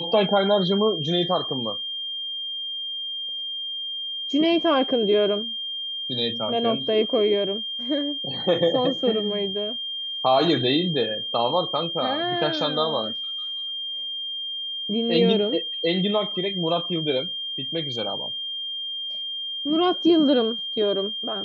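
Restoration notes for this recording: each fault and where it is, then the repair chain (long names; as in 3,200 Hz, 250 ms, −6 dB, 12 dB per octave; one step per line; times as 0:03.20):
whistle 3,200 Hz −28 dBFS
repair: notch filter 3,200 Hz, Q 30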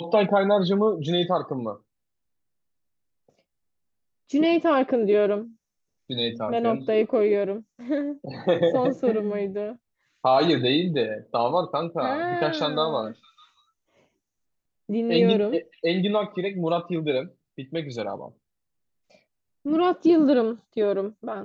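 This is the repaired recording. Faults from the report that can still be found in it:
none of them is left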